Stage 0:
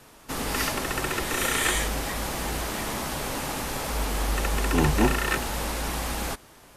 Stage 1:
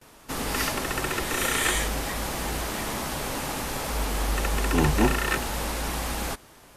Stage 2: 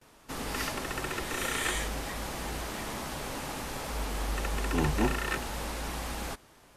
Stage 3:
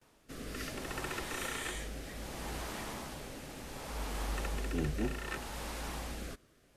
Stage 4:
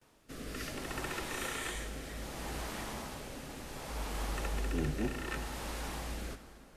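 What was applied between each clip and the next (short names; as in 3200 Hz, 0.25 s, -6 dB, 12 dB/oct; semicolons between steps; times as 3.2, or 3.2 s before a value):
gate with hold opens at -44 dBFS
high shelf 11000 Hz -6 dB; gain -6 dB
rotary speaker horn 0.65 Hz; gain -4 dB
plate-style reverb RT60 3.5 s, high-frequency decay 0.75×, DRR 9.5 dB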